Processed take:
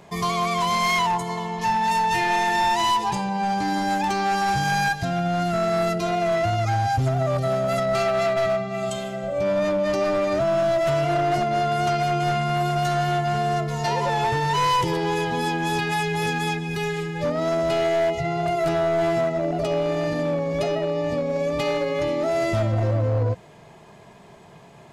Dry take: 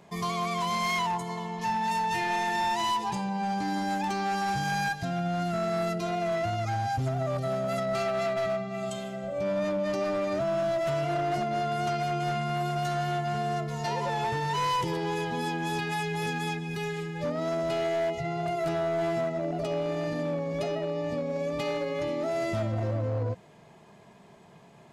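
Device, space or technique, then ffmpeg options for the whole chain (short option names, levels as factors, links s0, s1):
low shelf boost with a cut just above: -af "lowshelf=f=67:g=6,equalizer=f=210:t=o:w=0.76:g=-4,volume=2.24"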